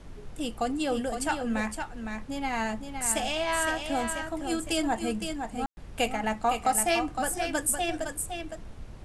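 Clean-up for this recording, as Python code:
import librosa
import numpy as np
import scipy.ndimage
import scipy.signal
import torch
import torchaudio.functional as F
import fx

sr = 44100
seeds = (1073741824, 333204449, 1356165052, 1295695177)

y = fx.fix_ambience(x, sr, seeds[0], print_start_s=8.53, print_end_s=9.03, start_s=5.66, end_s=5.77)
y = fx.noise_reduce(y, sr, print_start_s=8.53, print_end_s=9.03, reduce_db=30.0)
y = fx.fix_echo_inverse(y, sr, delay_ms=512, level_db=-6.5)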